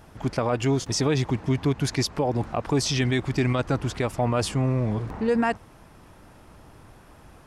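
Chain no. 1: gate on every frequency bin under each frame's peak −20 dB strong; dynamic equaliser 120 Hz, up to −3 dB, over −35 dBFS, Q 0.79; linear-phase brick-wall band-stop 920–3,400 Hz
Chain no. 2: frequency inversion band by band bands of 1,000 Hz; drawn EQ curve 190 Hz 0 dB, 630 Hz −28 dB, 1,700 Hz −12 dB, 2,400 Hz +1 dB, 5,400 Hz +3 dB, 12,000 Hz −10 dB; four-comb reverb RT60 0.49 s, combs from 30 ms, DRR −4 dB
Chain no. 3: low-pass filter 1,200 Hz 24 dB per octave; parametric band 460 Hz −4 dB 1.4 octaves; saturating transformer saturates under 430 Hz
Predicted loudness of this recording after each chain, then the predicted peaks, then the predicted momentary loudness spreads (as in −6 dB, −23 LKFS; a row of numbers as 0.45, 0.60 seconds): −27.0, −27.0, −30.5 LKFS; −14.0, −10.0, −16.0 dBFS; 5, 14, 4 LU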